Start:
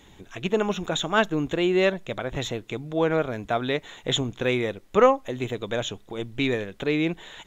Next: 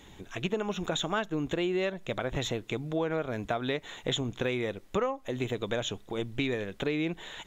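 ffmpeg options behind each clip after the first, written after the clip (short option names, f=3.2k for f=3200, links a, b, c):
-af "acompressor=threshold=-27dB:ratio=6"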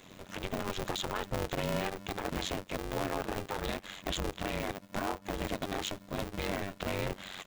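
-af "tremolo=f=93:d=0.919,alimiter=level_in=2.5dB:limit=-24dB:level=0:latency=1:release=23,volume=-2.5dB,aeval=exprs='val(0)*sgn(sin(2*PI*200*n/s))':c=same,volume=2.5dB"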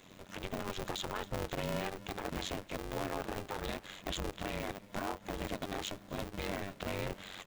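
-filter_complex "[0:a]asplit=5[a][b][c][d][e];[b]adelay=264,afreqshift=-51,volume=-22.5dB[f];[c]adelay=528,afreqshift=-102,volume=-26.9dB[g];[d]adelay=792,afreqshift=-153,volume=-31.4dB[h];[e]adelay=1056,afreqshift=-204,volume=-35.8dB[i];[a][f][g][h][i]amix=inputs=5:normalize=0,volume=-3.5dB"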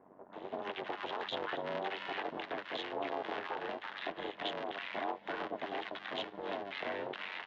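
-filter_complex "[0:a]aeval=exprs='val(0)+0.00178*(sin(2*PI*50*n/s)+sin(2*PI*2*50*n/s)/2+sin(2*PI*3*50*n/s)/3+sin(2*PI*4*50*n/s)/4+sin(2*PI*5*50*n/s)/5)':c=same,highpass=500,equalizer=f=540:t=q:w=4:g=-5,equalizer=f=1.3k:t=q:w=4:g=-4,equalizer=f=2.4k:t=q:w=4:g=-6,lowpass=f=3.1k:w=0.5412,lowpass=f=3.1k:w=1.3066,acrossover=split=1100[a][b];[b]adelay=330[c];[a][c]amix=inputs=2:normalize=0,volume=6.5dB"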